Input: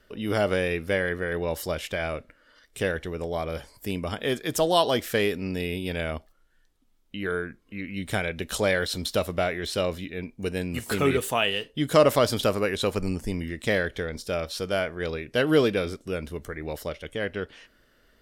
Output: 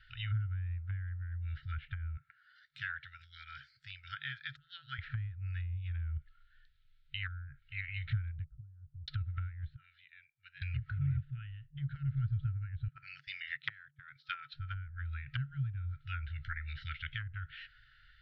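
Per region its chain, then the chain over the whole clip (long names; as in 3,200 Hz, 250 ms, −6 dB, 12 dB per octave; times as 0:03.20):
0:02.17–0:04.99: high-pass filter 270 Hz + parametric band 2,700 Hz −11.5 dB 1.6 octaves
0:08.44–0:09.08: downward compressor, threshold −29 dBFS + Chebyshev low-pass with heavy ripple 1,000 Hz, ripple 9 dB
0:09.76–0:10.62: low-pass filter 1,400 Hz + first difference
0:12.88–0:14.54: Butterworth high-pass 160 Hz 48 dB per octave + noise gate −36 dBFS, range −14 dB + dynamic equaliser 7,300 Hz, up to +6 dB, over −52 dBFS, Q 1
whole clip: brick-wall band-stop 150–1,300 Hz; treble cut that deepens with the level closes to 340 Hz, closed at −30.5 dBFS; Chebyshev low-pass filter 4,100 Hz, order 4; level +2 dB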